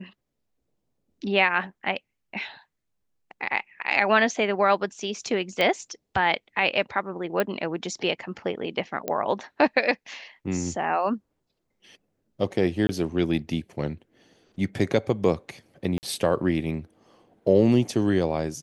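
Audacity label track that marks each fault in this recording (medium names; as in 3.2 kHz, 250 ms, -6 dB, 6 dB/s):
5.610000	5.610000	pop -11 dBFS
7.400000	7.400000	pop -11 dBFS
9.080000	9.080000	pop -14 dBFS
12.870000	12.890000	dropout 20 ms
15.980000	16.030000	dropout 49 ms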